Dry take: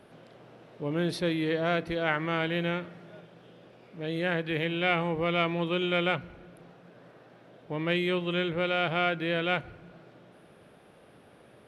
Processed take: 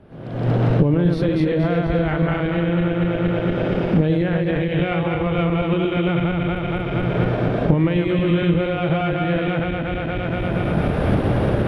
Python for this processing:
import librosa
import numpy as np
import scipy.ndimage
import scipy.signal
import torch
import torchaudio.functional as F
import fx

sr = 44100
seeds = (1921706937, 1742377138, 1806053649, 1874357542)

p1 = fx.reverse_delay_fb(x, sr, ms=117, feedback_pct=70, wet_db=-2.0)
p2 = fx.recorder_agc(p1, sr, target_db=-15.5, rise_db_per_s=48.0, max_gain_db=30)
p3 = fx.riaa(p2, sr, side='playback')
y = p3 + fx.echo_single(p3, sr, ms=573, db=-17.5, dry=0)